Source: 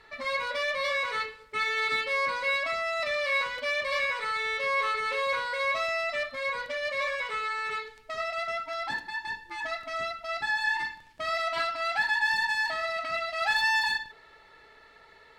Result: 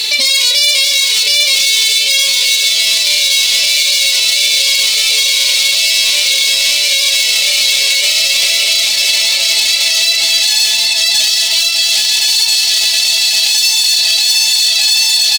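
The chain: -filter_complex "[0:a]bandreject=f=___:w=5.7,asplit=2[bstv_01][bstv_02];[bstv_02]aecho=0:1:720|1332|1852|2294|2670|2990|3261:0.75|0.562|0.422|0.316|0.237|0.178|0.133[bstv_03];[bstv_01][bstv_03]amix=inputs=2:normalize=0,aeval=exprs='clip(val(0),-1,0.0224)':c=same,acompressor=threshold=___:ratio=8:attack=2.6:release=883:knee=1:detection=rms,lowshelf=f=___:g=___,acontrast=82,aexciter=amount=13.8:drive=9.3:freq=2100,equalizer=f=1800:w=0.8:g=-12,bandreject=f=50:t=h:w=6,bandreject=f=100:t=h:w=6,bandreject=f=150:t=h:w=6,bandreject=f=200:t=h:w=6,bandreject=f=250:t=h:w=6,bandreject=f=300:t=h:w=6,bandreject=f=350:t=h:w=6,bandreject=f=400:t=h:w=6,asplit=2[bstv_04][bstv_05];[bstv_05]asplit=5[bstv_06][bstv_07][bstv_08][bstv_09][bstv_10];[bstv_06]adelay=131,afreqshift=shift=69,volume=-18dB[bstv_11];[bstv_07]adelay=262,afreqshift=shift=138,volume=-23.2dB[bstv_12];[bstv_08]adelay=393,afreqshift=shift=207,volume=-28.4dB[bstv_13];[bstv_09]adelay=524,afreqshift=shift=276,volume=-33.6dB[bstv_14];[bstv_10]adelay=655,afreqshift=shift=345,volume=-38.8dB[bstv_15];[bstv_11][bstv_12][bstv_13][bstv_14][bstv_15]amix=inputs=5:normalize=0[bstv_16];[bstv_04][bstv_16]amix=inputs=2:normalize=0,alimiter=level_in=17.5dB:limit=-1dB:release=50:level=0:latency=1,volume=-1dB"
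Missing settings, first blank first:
1800, -41dB, 75, -9.5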